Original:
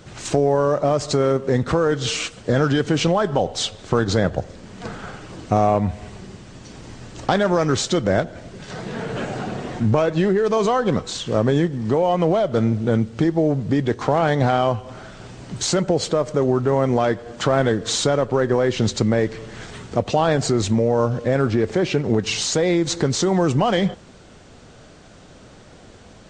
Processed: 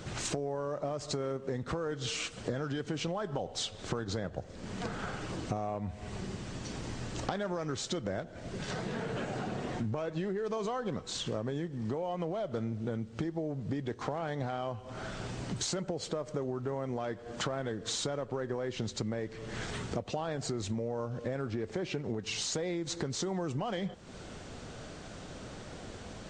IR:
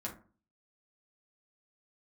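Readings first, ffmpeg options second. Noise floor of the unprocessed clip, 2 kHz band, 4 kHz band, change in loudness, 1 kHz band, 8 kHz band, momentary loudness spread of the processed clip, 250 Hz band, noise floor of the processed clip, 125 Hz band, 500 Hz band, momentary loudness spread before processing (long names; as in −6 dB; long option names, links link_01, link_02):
−45 dBFS, −14.0 dB, −12.0 dB, −16.0 dB, −16.0 dB, −11.5 dB, 7 LU, −15.5 dB, −48 dBFS, −15.0 dB, −16.5 dB, 16 LU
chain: -af "acompressor=threshold=-34dB:ratio=5"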